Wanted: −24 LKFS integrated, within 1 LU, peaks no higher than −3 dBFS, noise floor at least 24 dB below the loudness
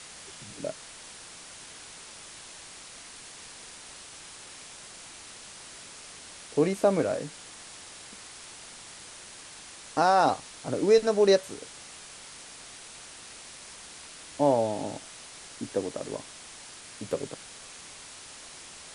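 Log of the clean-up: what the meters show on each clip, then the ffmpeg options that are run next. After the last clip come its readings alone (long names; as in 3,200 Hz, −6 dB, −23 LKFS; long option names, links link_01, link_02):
background noise floor −47 dBFS; target noise floor −52 dBFS; integrated loudness −27.5 LKFS; sample peak −9.5 dBFS; target loudness −24.0 LKFS
→ -af "afftdn=noise_reduction=6:noise_floor=-47"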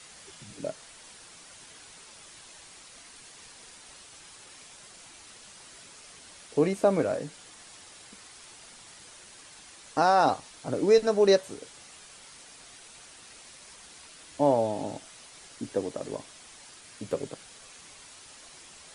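background noise floor −51 dBFS; integrated loudness −27.0 LKFS; sample peak −9.5 dBFS; target loudness −24.0 LKFS
→ -af "volume=3dB"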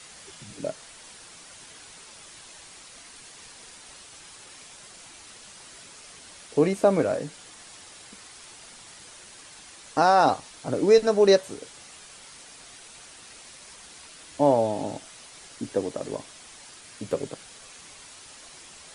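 integrated loudness −24.0 LKFS; sample peak −6.5 dBFS; background noise floor −48 dBFS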